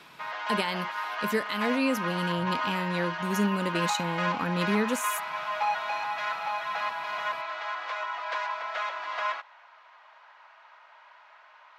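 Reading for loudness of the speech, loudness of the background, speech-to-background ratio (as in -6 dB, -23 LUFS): -30.5 LUFS, -31.5 LUFS, 1.0 dB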